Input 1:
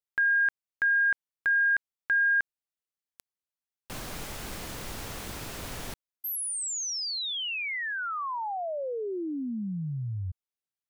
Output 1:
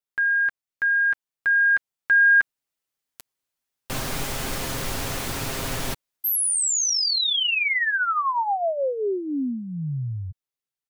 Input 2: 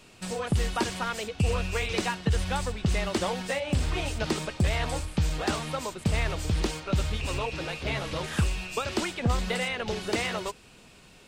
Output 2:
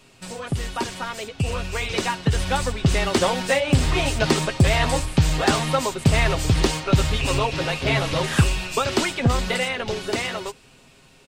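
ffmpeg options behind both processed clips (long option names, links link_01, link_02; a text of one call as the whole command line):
ffmpeg -i in.wav -af "aecho=1:1:7.5:0.44,dynaudnorm=framelen=350:gausssize=13:maxgain=9dB" out.wav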